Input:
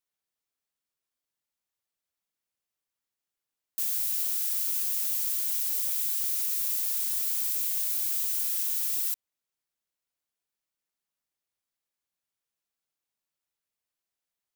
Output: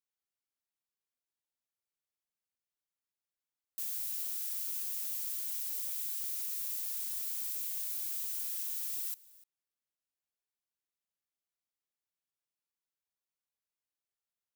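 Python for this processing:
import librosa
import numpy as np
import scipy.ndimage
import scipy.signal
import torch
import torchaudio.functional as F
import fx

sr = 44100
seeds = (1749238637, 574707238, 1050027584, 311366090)

y = x + 10.0 ** (-22.0 / 20.0) * np.pad(x, (int(297 * sr / 1000.0), 0))[:len(x)]
y = F.gain(torch.from_numpy(y), -8.5).numpy()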